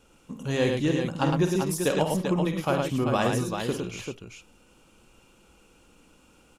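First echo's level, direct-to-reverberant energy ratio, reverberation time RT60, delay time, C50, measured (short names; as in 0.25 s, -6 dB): -8.5 dB, none, none, 50 ms, none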